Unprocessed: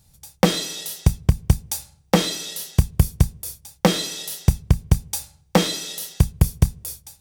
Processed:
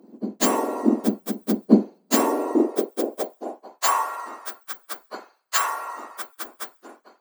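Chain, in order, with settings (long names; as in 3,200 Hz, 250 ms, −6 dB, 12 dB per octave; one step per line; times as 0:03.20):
frequency axis turned over on the octave scale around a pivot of 1,900 Hz
high-pass filter sweep 190 Hz → 1,300 Hz, 0:01.93–0:04.16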